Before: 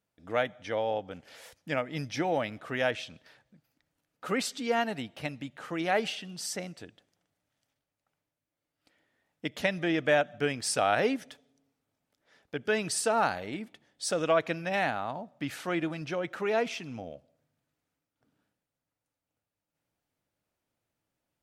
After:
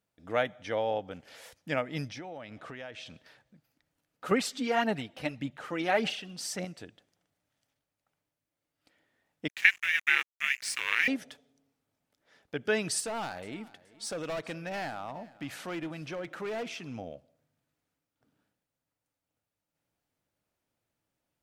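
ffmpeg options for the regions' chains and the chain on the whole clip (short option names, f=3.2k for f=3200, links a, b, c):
-filter_complex "[0:a]asettb=1/sr,asplit=3[a][b][c];[a]atrim=end=2.084[d];[b]atrim=start=2.08:end=3.06,asetpts=PTS-STARTPTS,afade=t=in:d=0.004:c=qsin,afade=t=out:st=0.976:d=0.004:c=qsin,lowpass=8.5k,acompressor=threshold=-40dB:ratio=5:attack=3.2:release=140:knee=1:detection=peak[e];[c]atrim=start=3.056[f];[d][e]acrossfade=d=0.004:c1=hsin:c2=qsin[g];[g][f]acrossfade=d=0.004:c1=qsin:c2=hsin,asettb=1/sr,asplit=3[h][i][j];[h]atrim=end=4.314[k];[i]atrim=start=4.31:end=6.65,asetpts=PTS-STARTPTS,afade=t=in:d=0.004:c=qsin,afade=t=out:st=2.336:d=0.004:c=qsin,aphaser=in_gain=1:out_gain=1:delay=4:decay=0.46:speed=1.7:type=sinusoidal,highshelf=f=5.7k:g=-3.5[l];[j]atrim=start=6.646[m];[k][l]acrossfade=d=0.004:c1=hsin:c2=qsin[n];[n][m]acrossfade=d=0.004:c1=qsin:c2=hsin,asettb=1/sr,asplit=3[o][p][q];[o]atrim=end=9.484[r];[p]atrim=start=9.48:end=11.08,asetpts=PTS-STARTPTS,afade=t=in:d=0.004:c=qsin,afade=t=out:st=1.596:d=0.004:c=qsin,highpass=f=2.1k:t=q:w=9.1,aeval=exprs='sgn(val(0))*max(abs(val(0))-0.00891,0)':c=same,aeval=exprs='val(0)*sin(2*PI*240*n/s)':c=same[s];[q]atrim=start=11.076[t];[r][s]acrossfade=d=0.004:c1=hsin:c2=qsin[u];[u][t]acrossfade=d=0.004:c1=qsin:c2=hsin,asettb=1/sr,asplit=3[v][w][x];[v]atrim=end=13.004[y];[w]atrim=start=13:end=16.87,asetpts=PTS-STARTPTS,afade=t=in:d=0.004:c=qsin,afade=t=out:st=3.866:d=0.004:c=qsin,volume=27dB,asoftclip=hard,volume=-27dB,acompressor=threshold=-42dB:ratio=1.5:attack=3.2:release=140:knee=1:detection=peak,aecho=1:1:425|850:0.0891|0.0276,atrim=end_sample=170667[z];[x]atrim=start=16.866[aa];[y][z]acrossfade=d=0.004:c1=hsin:c2=qsin[ab];[ab][aa]acrossfade=d=0.004:c1=qsin:c2=hsin"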